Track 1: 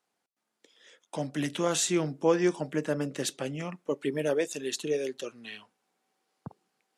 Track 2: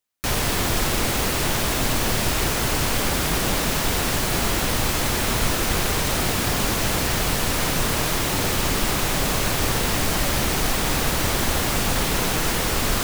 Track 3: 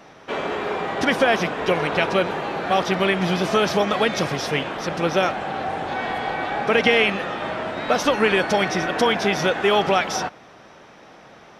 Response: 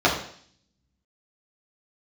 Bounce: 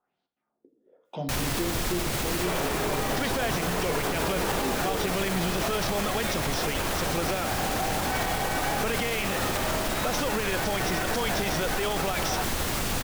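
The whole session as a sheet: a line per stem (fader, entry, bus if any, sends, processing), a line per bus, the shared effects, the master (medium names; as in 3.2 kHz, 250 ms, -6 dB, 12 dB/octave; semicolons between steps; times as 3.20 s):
-5.5 dB, 0.00 s, send -20 dB, bass shelf 190 Hz +12 dB; compression, threshold -26 dBFS, peak gain reduction 10 dB; LFO low-pass sine 1 Hz 270–4000 Hz
-5.0 dB, 1.05 s, no send, none
0.0 dB, 2.15 s, no send, peak limiter -14.5 dBFS, peak gain reduction 11.5 dB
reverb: on, RT60 0.55 s, pre-delay 3 ms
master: peak limiter -18 dBFS, peak gain reduction 9 dB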